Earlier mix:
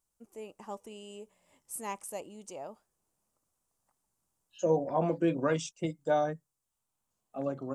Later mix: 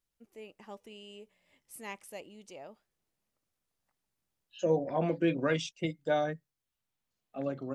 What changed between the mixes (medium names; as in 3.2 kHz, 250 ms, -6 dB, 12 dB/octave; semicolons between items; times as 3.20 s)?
first voice -3.5 dB; master: add ten-band graphic EQ 1 kHz -6 dB, 2 kHz +7 dB, 4 kHz +6 dB, 8 kHz -9 dB